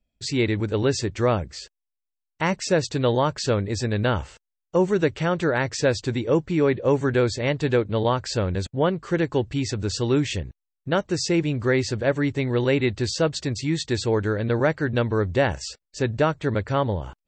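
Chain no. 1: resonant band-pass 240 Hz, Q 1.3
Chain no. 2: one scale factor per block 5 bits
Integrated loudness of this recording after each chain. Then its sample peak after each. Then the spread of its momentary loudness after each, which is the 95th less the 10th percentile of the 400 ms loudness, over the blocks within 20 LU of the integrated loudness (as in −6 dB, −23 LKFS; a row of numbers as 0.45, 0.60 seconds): −28.5, −23.5 LKFS; −14.5, −8.5 dBFS; 6, 5 LU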